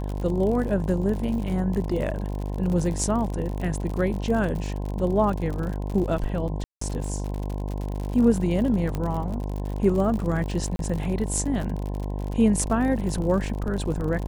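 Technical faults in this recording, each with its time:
buzz 50 Hz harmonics 21 -29 dBFS
crackle 65/s -30 dBFS
6.64–6.81 gap 0.174 s
8.95 pop -16 dBFS
10.76–10.79 gap 32 ms

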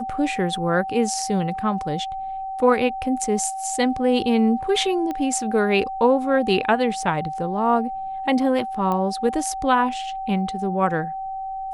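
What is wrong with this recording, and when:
tone 770 Hz -27 dBFS
5.11 pop -16 dBFS
8.92 pop -14 dBFS

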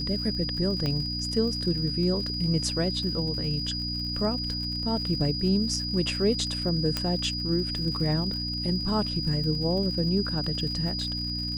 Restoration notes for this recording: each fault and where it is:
crackle 100/s -36 dBFS
hum 60 Hz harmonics 5 -34 dBFS
tone 4900 Hz -31 dBFS
0.86 pop -17 dBFS
6.97 pop -12 dBFS

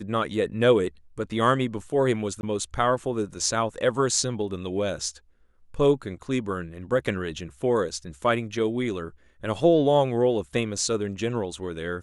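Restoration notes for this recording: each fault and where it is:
2.41–2.43 gap 21 ms

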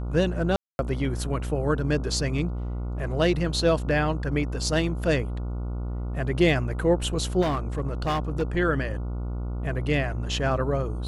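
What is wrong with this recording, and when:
buzz 60 Hz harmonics 24 -30 dBFS
0.56–0.79 gap 0.231 s
7.41–8.43 clipped -21 dBFS

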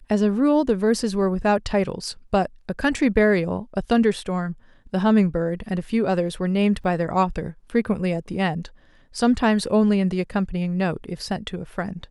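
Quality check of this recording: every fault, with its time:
6.84 gap 3.5 ms

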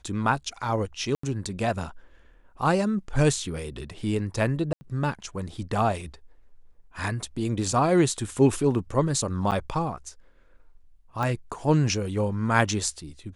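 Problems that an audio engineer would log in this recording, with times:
1.15–1.23 gap 84 ms
4.73–4.81 gap 80 ms
9.51–9.52 gap 8.4 ms
11.23 pop -17 dBFS

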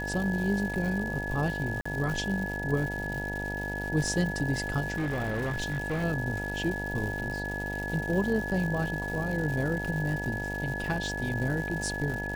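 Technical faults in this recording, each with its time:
buzz 50 Hz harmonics 19 -36 dBFS
crackle 330/s -35 dBFS
tone 1700 Hz -34 dBFS
1.81–1.85 gap 45 ms
4.96–6.04 clipped -26.5 dBFS

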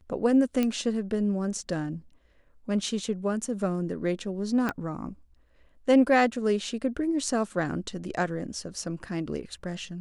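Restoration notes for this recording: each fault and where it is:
0.63 pop -14 dBFS
4.69 pop -15 dBFS

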